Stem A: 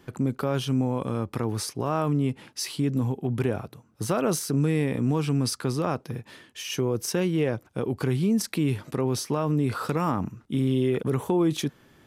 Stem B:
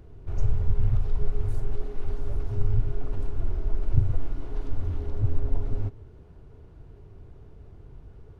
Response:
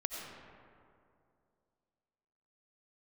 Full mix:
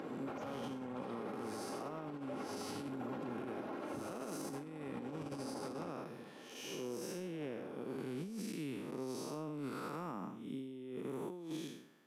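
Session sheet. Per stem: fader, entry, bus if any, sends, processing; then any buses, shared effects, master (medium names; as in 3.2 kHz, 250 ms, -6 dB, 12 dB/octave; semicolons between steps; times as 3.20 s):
-10.0 dB, 0.00 s, no send, spectral blur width 243 ms
-5.0 dB, 0.00 s, no send, comb 3.7 ms, depth 57%; overdrive pedal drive 30 dB, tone 1.4 kHz, clips at -5 dBFS; auto duck -11 dB, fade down 0.70 s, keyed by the first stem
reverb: none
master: high-pass 180 Hz 24 dB/octave; compressor with a negative ratio -40 dBFS, ratio -0.5; peak limiter -34 dBFS, peak gain reduction 6.5 dB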